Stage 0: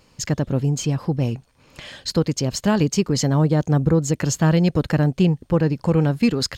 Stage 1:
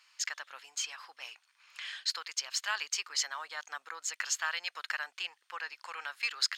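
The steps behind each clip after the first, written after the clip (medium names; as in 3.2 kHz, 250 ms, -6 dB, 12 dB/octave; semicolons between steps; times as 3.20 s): high-pass 1.3 kHz 24 dB/octave; treble shelf 7 kHz -11 dB; trim -1 dB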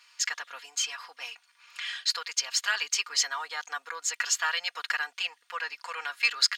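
comb 4.2 ms, depth 79%; trim +4 dB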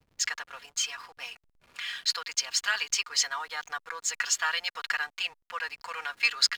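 hysteresis with a dead band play -46 dBFS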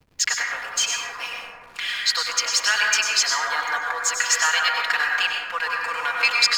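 in parallel at -1 dB: peak limiter -19 dBFS, peak gain reduction 10 dB; on the sum: plate-style reverb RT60 1.9 s, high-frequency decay 0.25×, pre-delay 85 ms, DRR -1.5 dB; trim +2 dB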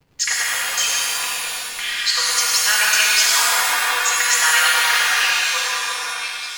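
fade out at the end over 1.36 s; pitch-shifted reverb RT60 1.8 s, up +7 st, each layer -2 dB, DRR -1.5 dB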